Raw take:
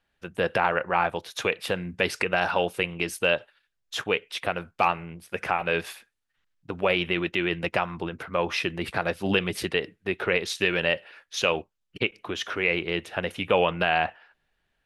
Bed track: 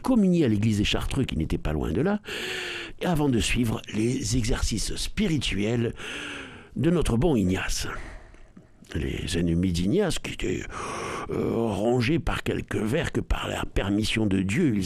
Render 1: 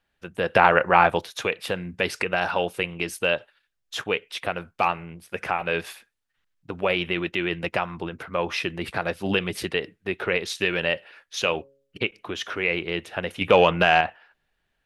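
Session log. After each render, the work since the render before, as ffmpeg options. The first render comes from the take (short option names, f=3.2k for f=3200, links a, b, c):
-filter_complex "[0:a]asettb=1/sr,asplit=3[a][b][c];[a]atrim=end=11.374[d];[b]atrim=start=11.37:end=12.06,asetpts=PTS-STARTPTS,afade=t=in:d=0.004:c=qsin,afade=t=out:st=0.686:d=0.004:c=qsin,bandreject=f=137.4:t=h:w=4,bandreject=f=274.8:t=h:w=4,bandreject=f=412.2:t=h:w=4,bandreject=f=549.6:t=h:w=4[e];[c]atrim=start=12.056[f];[d][e]acrossfade=d=0.004:c1=hsin:c2=qsin[g];[g][f]acrossfade=d=0.004:c1=qsin:c2=hsin,asettb=1/sr,asplit=3[h][i][j];[h]atrim=end=13.414[k];[i]atrim=start=13.41:end=14.01,asetpts=PTS-STARTPTS,afade=t=in:d=0.004:c=qsin,afade=t=out:st=0.596:d=0.004:c=qsin,acontrast=48[l];[j]atrim=start=14.006[m];[k][l]acrossfade=d=0.004:c1=hsin:c2=qsin[n];[n][m]acrossfade=d=0.004:c1=qsin:c2=hsin,asplit=3[o][p][q];[o]atrim=end=0.562[r];[p]atrim=start=0.558:end=1.262,asetpts=PTS-STARTPTS,volume=7dB[s];[q]atrim=start=1.258[t];[r][s]acrossfade=d=0.004:c1=hsin:c2=hsin[u];[u][t]acrossfade=d=0.004:c1=hsin:c2=hsin"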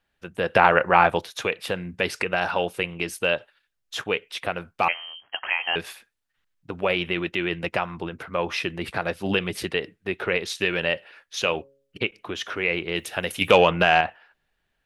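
-filter_complex "[0:a]asettb=1/sr,asplit=3[a][b][c];[a]atrim=end=4.884[d];[b]atrim=start=4.88:end=5.76,asetpts=PTS-STARTPTS,afade=t=in:d=0.004:c=qsin,afade=t=out:st=0.876:d=0.004:c=qsin,lowpass=f=2.8k:t=q:w=0.5098,lowpass=f=2.8k:t=q:w=0.6013,lowpass=f=2.8k:t=q:w=0.9,lowpass=f=2.8k:t=q:w=2.563,afreqshift=-3300[e];[c]atrim=start=5.756[f];[d][e]acrossfade=d=0.004:c1=hsin:c2=qsin[g];[g][f]acrossfade=d=0.004:c1=qsin:c2=hsin,asettb=1/sr,asplit=3[h][i][j];[h]atrim=end=12.954[k];[i]atrim=start=12.95:end=13.58,asetpts=PTS-STARTPTS,afade=t=in:d=0.004:c=qsin,afade=t=out:st=0.626:d=0.004:c=qsin,aemphasis=mode=production:type=75kf[l];[j]atrim=start=13.576[m];[k][l]acrossfade=d=0.004:c1=hsin:c2=qsin[n];[n][m]acrossfade=d=0.004:c1=qsin:c2=hsin"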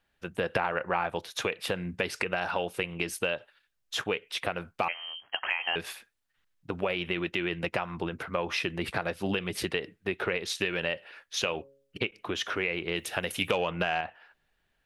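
-af "acompressor=threshold=-26dB:ratio=5"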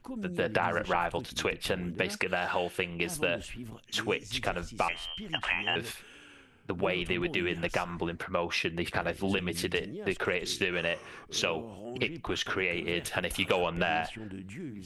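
-filter_complex "[1:a]volume=-18dB[a];[0:a][a]amix=inputs=2:normalize=0"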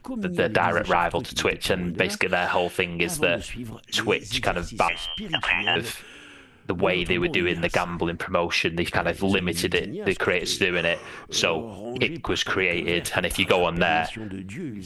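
-af "volume=7.5dB,alimiter=limit=-3dB:level=0:latency=1"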